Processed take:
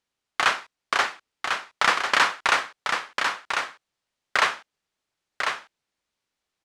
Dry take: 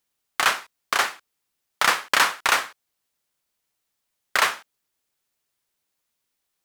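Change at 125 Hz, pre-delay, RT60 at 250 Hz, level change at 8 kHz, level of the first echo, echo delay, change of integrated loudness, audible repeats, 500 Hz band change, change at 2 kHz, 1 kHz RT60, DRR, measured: can't be measured, no reverb audible, no reverb audible, −5.5 dB, −5.5 dB, 1,047 ms, −2.5 dB, 1, +1.0 dB, +0.5 dB, no reverb audible, no reverb audible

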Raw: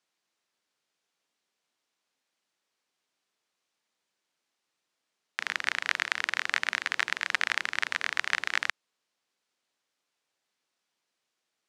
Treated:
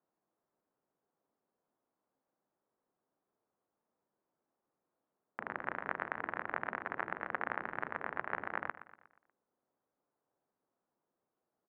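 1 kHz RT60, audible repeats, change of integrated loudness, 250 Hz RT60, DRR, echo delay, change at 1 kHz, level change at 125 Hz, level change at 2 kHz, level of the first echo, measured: no reverb audible, 4, −10.5 dB, no reverb audible, no reverb audible, 120 ms, −2.0 dB, can't be measured, −12.0 dB, −14.0 dB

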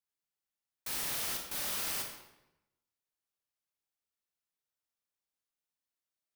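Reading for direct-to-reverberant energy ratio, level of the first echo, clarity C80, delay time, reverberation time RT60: 1.0 dB, no echo audible, 7.0 dB, no echo audible, 0.95 s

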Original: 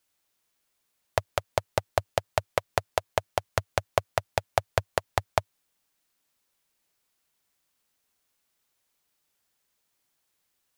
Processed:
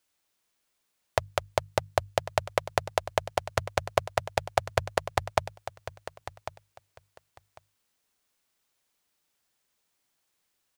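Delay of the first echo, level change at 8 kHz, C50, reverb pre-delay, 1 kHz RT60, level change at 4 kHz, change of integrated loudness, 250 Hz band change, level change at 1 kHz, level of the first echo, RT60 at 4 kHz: 1,098 ms, −0.5 dB, no reverb audible, no reverb audible, no reverb audible, 0.0 dB, 0.0 dB, 0.0 dB, 0.0 dB, −13.5 dB, no reverb audible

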